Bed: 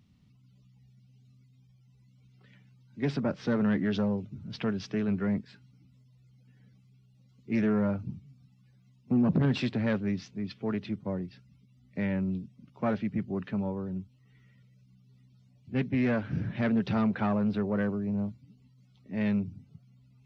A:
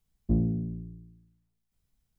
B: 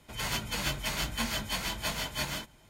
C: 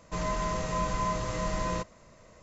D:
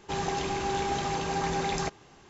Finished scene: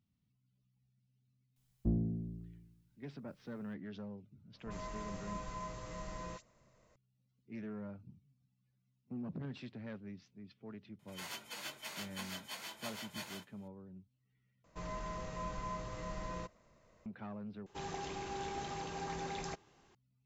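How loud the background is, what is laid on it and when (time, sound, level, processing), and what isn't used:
bed -18 dB
1.56 s: add A -7.5 dB + tape noise reduction on one side only encoder only
4.54 s: add C -14 dB + phase dispersion highs, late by 56 ms, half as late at 2 kHz
10.99 s: add B -12 dB + high-pass 320 Hz
14.64 s: replace with C -11.5 dB + distance through air 53 m
17.66 s: replace with D -12 dB

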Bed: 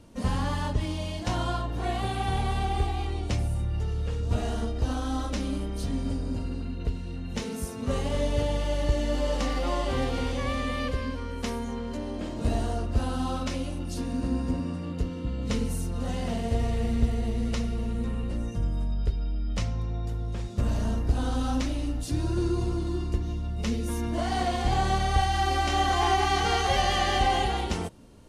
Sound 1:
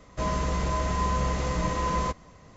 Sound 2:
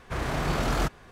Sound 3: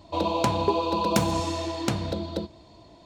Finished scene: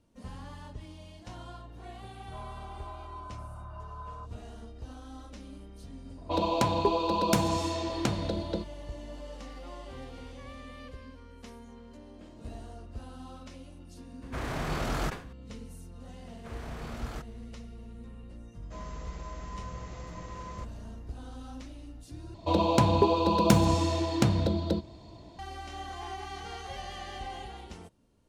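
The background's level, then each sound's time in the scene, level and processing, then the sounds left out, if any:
bed -16 dB
2.14 s: add 1 -15 dB + brick-wall FIR band-pass 560–1600 Hz
6.17 s: add 3 -2.5 dB + level-controlled noise filter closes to 1.3 kHz, open at -23.5 dBFS
14.22 s: add 2 -5 dB + decay stretcher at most 140 dB/s
16.34 s: add 2 -15 dB
18.53 s: add 1 -15.5 dB
22.34 s: replace with 3 -1.5 dB + bass shelf 260 Hz +7.5 dB

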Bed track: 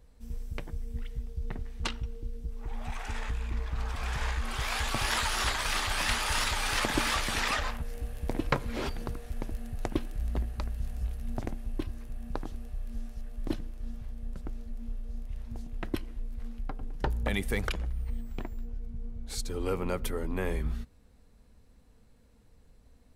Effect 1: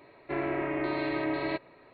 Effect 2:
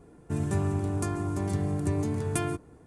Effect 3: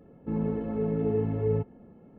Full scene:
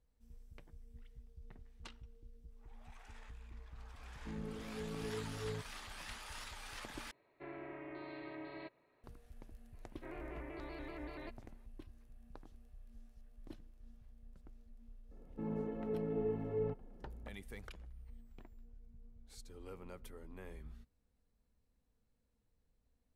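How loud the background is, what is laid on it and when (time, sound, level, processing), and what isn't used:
bed track -19.5 dB
3.99 s: add 3 -16 dB
7.11 s: replace with 1 -17.5 dB
9.73 s: add 1 -17.5 dB + vibrato with a chosen wave square 5.2 Hz, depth 100 cents
15.11 s: add 3 -7.5 dB + high-pass 250 Hz 6 dB/octave
not used: 2

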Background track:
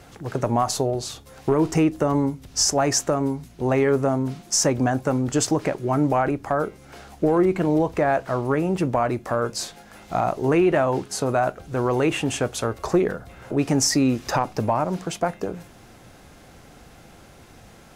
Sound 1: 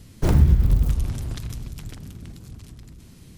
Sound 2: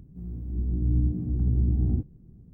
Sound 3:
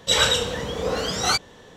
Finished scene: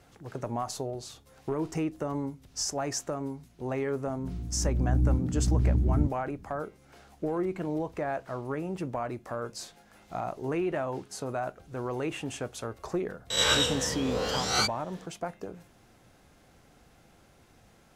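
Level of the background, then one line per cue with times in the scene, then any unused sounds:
background track -11.5 dB
4.07 s: add 2 -1 dB
13.30 s: add 3 -7.5 dB + reverse spectral sustain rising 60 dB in 0.54 s
not used: 1

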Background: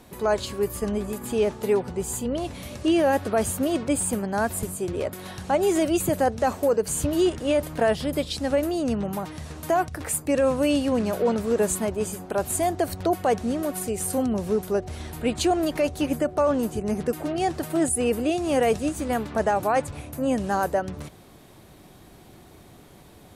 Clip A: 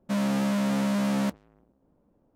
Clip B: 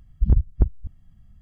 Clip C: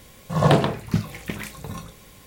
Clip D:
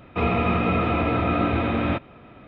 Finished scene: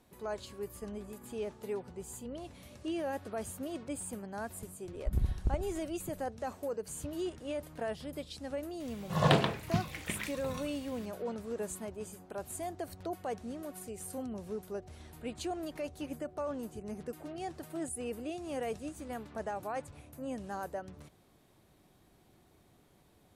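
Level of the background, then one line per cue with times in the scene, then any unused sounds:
background -15.5 dB
4.85 s: add B -13.5 dB + feedback delay 69 ms, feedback 42%, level -4 dB
8.80 s: add C -9.5 dB + peaking EQ 2.9 kHz +6.5 dB 2.1 oct
not used: A, D

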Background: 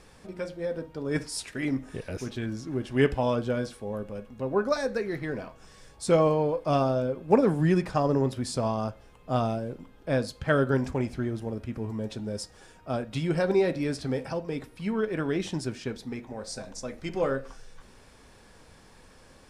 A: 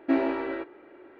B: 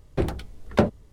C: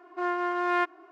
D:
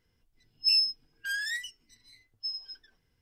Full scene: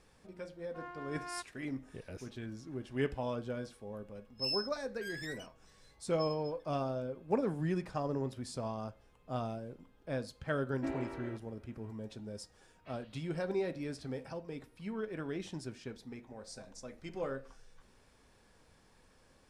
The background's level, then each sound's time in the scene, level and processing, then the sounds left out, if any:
background -11 dB
0.57 s: add C -17 dB + peaking EQ 350 Hz -5.5 dB
3.76 s: add D -12 dB
10.74 s: add A -14 dB
12.77 s: add A -13 dB + spectral gate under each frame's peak -30 dB weak
not used: B

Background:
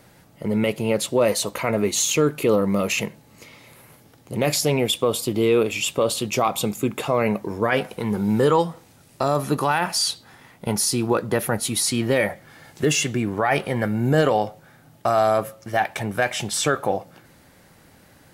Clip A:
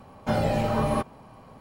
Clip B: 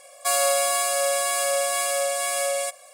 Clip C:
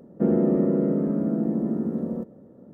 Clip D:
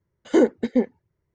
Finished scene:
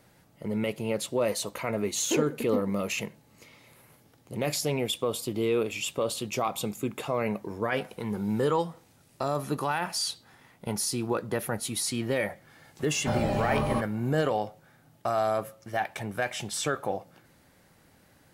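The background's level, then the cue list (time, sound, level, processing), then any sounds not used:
background -8 dB
1.77 s: add D -11 dB + delay 133 ms -16.5 dB
12.79 s: add A -3.5 dB
not used: B, C

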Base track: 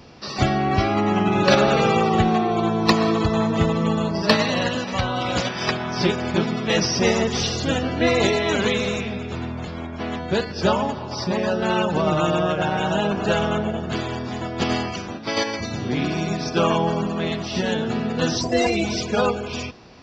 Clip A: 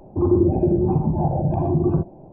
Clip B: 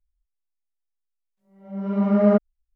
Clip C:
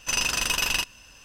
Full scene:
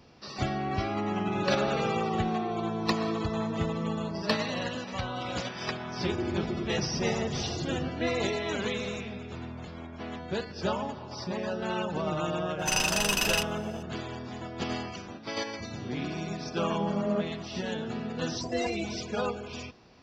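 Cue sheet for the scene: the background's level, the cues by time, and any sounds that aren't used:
base track -10.5 dB
5.87 s: add A -16.5 dB
12.59 s: add C -2.5 dB
14.84 s: add B -12 dB

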